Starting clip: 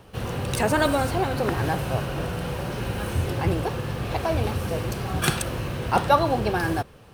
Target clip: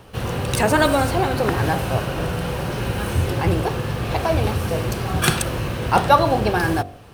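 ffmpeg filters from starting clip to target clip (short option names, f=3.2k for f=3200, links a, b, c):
-af "bandreject=f=47.45:t=h:w=4,bandreject=f=94.9:t=h:w=4,bandreject=f=142.35:t=h:w=4,bandreject=f=189.8:t=h:w=4,bandreject=f=237.25:t=h:w=4,bandreject=f=284.7:t=h:w=4,bandreject=f=332.15:t=h:w=4,bandreject=f=379.6:t=h:w=4,bandreject=f=427.05:t=h:w=4,bandreject=f=474.5:t=h:w=4,bandreject=f=521.95:t=h:w=4,bandreject=f=569.4:t=h:w=4,bandreject=f=616.85:t=h:w=4,bandreject=f=664.3:t=h:w=4,bandreject=f=711.75:t=h:w=4,bandreject=f=759.2:t=h:w=4,bandreject=f=806.65:t=h:w=4,volume=5dB"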